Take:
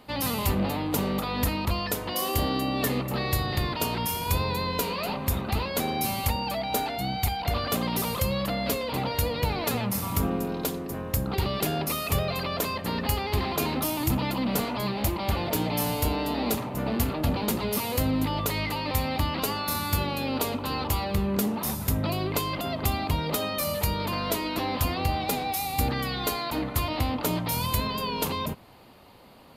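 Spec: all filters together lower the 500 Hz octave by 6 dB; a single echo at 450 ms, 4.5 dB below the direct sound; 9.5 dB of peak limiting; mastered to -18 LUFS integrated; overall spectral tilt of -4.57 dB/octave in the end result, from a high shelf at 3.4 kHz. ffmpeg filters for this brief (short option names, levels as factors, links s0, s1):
-af "equalizer=f=500:t=o:g=-7.5,highshelf=f=3400:g=-6.5,alimiter=limit=0.0708:level=0:latency=1,aecho=1:1:450:0.596,volume=4.73"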